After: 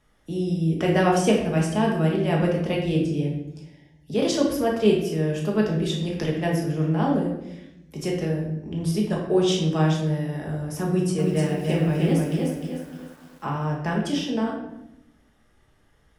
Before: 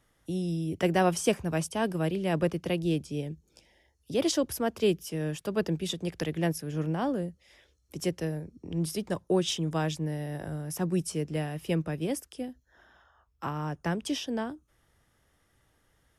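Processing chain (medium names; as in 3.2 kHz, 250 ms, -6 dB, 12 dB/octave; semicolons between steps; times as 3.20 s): treble shelf 9.4 kHz -10.5 dB; simulated room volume 300 m³, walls mixed, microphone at 1.4 m; 10.88–13.50 s: bit-crushed delay 304 ms, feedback 35%, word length 9-bit, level -3.5 dB; trim +1.5 dB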